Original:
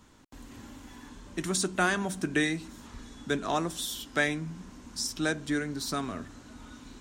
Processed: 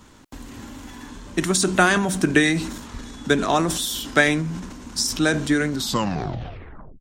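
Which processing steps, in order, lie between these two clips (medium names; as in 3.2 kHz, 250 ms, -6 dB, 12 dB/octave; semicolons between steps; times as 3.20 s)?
tape stop on the ending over 1.27 s; transient shaper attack +4 dB, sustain +8 dB; trim +7.5 dB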